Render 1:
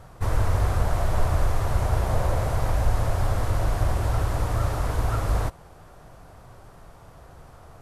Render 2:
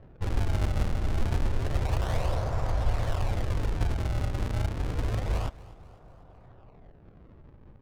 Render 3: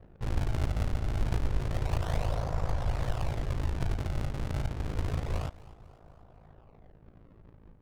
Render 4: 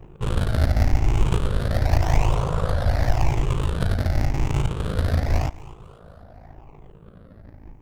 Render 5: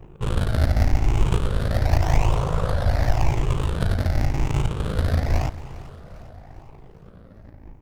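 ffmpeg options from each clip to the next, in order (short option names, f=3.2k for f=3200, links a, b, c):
-af "acrusher=samples=36:mix=1:aa=0.000001:lfo=1:lforange=57.6:lforate=0.29,adynamicsmooth=sensitivity=6.5:basefreq=1.1k,aecho=1:1:249|498|747|996:0.1|0.054|0.0292|0.0157,volume=-4.5dB"
-af "aeval=exprs='val(0)*sin(2*PI*27*n/s)':c=same"
-af "afftfilt=real='re*pow(10,9/40*sin(2*PI*(0.7*log(max(b,1)*sr/1024/100)/log(2)-(0.89)*(pts-256)/sr)))':imag='im*pow(10,9/40*sin(2*PI*(0.7*log(max(b,1)*sr/1024/100)/log(2)-(0.89)*(pts-256)/sr)))':win_size=1024:overlap=0.75,volume=9dB"
-af "aecho=1:1:402|804|1206|1608|2010:0.126|0.0718|0.0409|0.0233|0.0133"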